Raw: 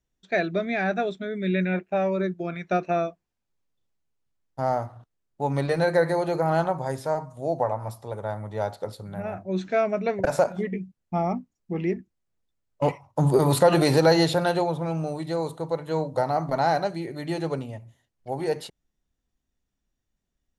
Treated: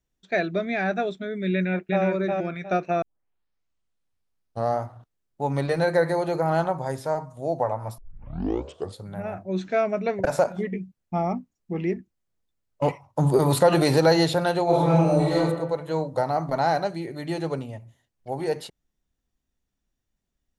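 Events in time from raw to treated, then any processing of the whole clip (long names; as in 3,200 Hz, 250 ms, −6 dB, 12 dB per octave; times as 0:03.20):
0:01.53–0:02.04: delay throw 360 ms, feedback 25%, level −2.5 dB
0:03.02: tape start 1.80 s
0:07.98: tape start 1.01 s
0:14.64–0:15.37: thrown reverb, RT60 1.1 s, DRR −8.5 dB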